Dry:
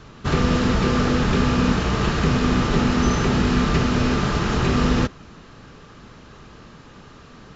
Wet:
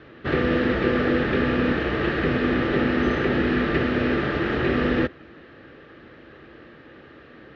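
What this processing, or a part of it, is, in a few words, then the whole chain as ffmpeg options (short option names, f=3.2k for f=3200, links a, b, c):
guitar cabinet: -af "highpass=76,equalizer=f=110:t=q:w=4:g=-6,equalizer=f=180:t=q:w=4:g=-8,equalizer=f=330:t=q:w=4:g=9,equalizer=f=530:t=q:w=4:g=7,equalizer=f=990:t=q:w=4:g=-8,equalizer=f=1.8k:t=q:w=4:g=9,lowpass=f=3.5k:w=0.5412,lowpass=f=3.5k:w=1.3066,volume=-3dB"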